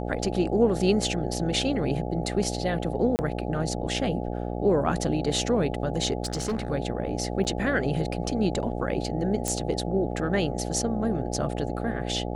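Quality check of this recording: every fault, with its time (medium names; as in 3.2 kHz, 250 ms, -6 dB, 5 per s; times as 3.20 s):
buzz 60 Hz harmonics 14 -31 dBFS
3.16–3.19 s: dropout 29 ms
6.23–6.70 s: clipped -24 dBFS
7.44–7.45 s: dropout 8.7 ms
9.48 s: pop -11 dBFS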